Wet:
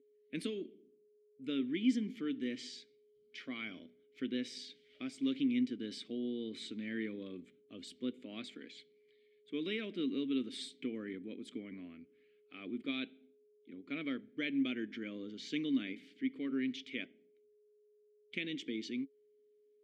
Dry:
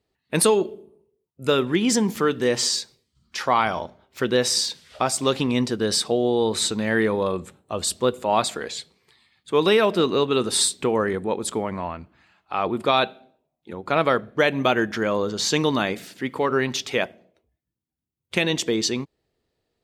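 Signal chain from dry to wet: whine 420 Hz -43 dBFS; vowel filter i; gain -4.5 dB

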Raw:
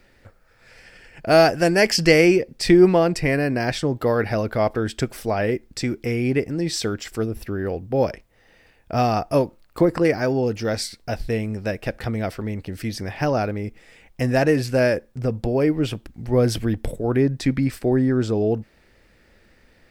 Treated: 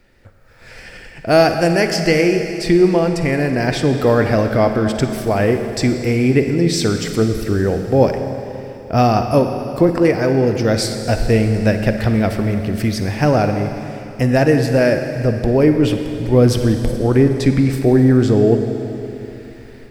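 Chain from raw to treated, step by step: low shelf 390 Hz +3.5 dB; AGC; on a send: reverb RT60 3.2 s, pre-delay 41 ms, DRR 6 dB; on the sum: gain -1.5 dB

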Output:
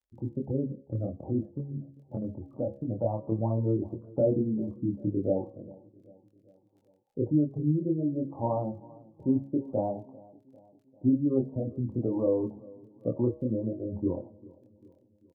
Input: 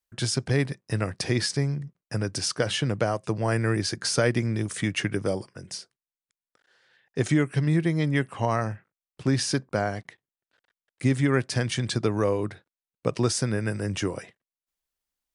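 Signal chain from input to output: spectral gate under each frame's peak -20 dB strong; steep low-pass 950 Hz 72 dB/oct; de-hum 68.94 Hz, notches 17; 0.67–3.23 dynamic EQ 410 Hz, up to -6 dB, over -40 dBFS, Q 1.7; comb 3.5 ms, depth 44%; crackle 11/s -56 dBFS; chorus voices 2, 0.46 Hz, delay 25 ms, depth 2.5 ms; feedback echo 0.396 s, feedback 53%, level -22.5 dB; gain +1 dB

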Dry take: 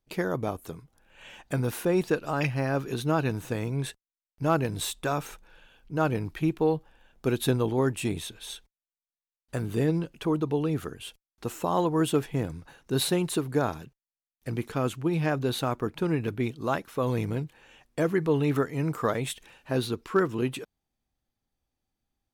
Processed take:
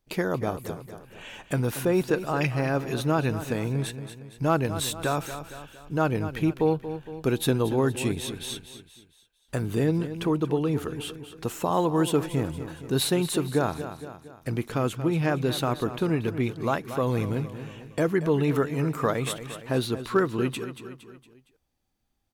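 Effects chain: feedback echo 0.231 s, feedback 45%, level -13 dB; in parallel at -2 dB: compressor, threshold -36 dBFS, peak gain reduction 16.5 dB

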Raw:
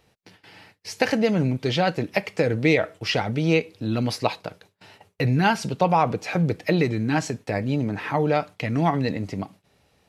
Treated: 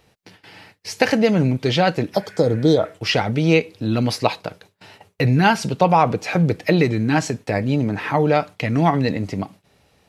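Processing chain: spectral repair 2.17–2.83, 1400–3100 Hz after; gain +4.5 dB

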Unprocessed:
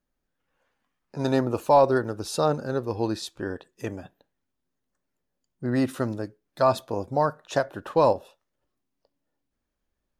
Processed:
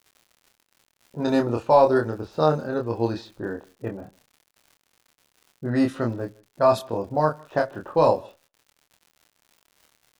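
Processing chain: expander -49 dBFS; low-pass opened by the level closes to 490 Hz, open at -19 dBFS; crackle 100/s -43 dBFS; doubler 26 ms -3.5 dB; outdoor echo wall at 27 m, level -26 dB

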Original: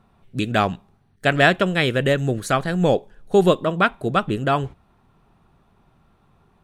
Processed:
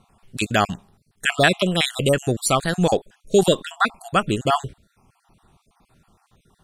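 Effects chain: random spectral dropouts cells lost 39%; bell 8500 Hz +13.5 dB 2 oct; in parallel at -1 dB: limiter -9.5 dBFS, peak gain reduction 10.5 dB; on the sum: gain -4.5 dB

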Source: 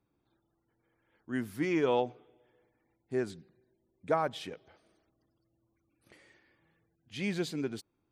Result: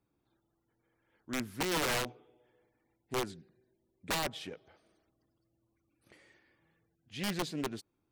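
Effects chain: wrapped overs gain 25 dB; Doppler distortion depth 0.21 ms; gain -1.5 dB

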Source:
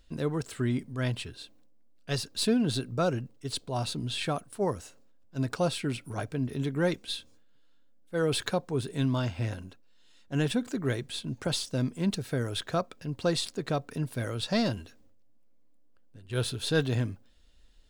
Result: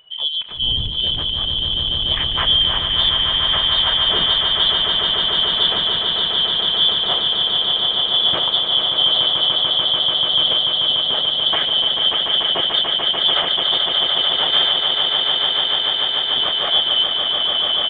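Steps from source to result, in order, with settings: four-band scrambler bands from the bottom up 3412; 0.53–1.18 wind noise 94 Hz -29 dBFS; air absorption 54 m; on a send: swelling echo 0.146 s, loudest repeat 8, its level -6 dB; on the sum: downsampling 8000 Hz; gain +8.5 dB

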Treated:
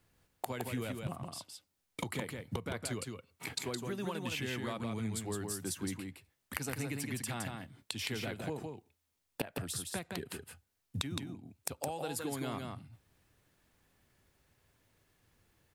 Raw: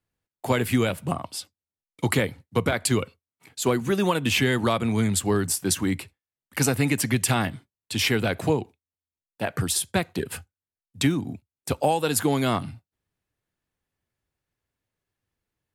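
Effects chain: flipped gate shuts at -28 dBFS, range -24 dB; compressor 2.5:1, threshold -48 dBFS, peak gain reduction 10.5 dB; echo 0.165 s -4.5 dB; gain +11.5 dB

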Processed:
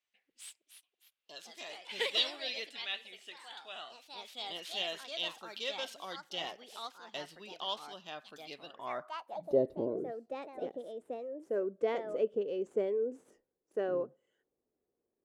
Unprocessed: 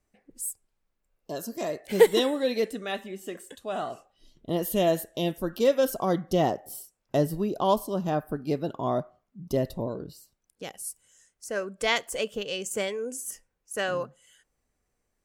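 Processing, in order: median filter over 3 samples; echoes that change speed 0.366 s, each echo +3 st, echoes 2, each echo -6 dB; band-pass sweep 3200 Hz -> 380 Hz, 8.64–9.68; gain +2.5 dB

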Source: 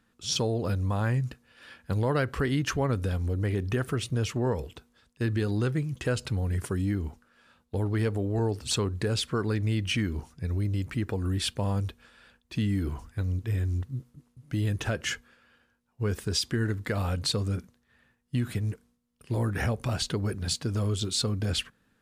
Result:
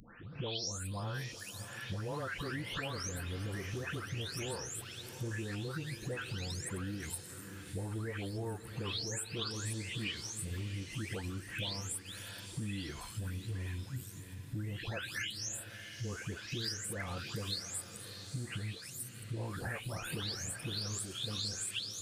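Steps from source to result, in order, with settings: spectral delay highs late, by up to 0.495 s; tilt shelf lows -5.5 dB, about 1200 Hz; compressor 5:1, threshold -40 dBFS, peak gain reduction 17 dB; on a send: diffused feedback echo 0.666 s, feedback 47%, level -11 dB; on the sum: upward compressor, threshold -45 dBFS; gain +2.5 dB

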